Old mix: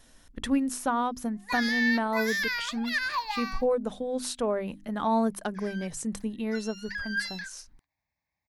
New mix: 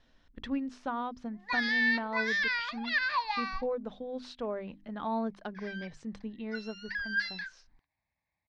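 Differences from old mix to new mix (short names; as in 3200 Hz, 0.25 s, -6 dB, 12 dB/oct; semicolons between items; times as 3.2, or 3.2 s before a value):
speech -7.5 dB; master: add LPF 4500 Hz 24 dB/oct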